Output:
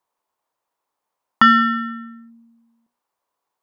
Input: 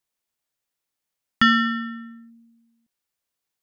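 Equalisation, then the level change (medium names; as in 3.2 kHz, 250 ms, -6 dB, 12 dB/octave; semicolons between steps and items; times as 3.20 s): peaking EQ 500 Hz +11 dB 2.3 oct; peaking EQ 1 kHz +15 dB 0.78 oct; hum notches 60/120/180/240 Hz; -3.0 dB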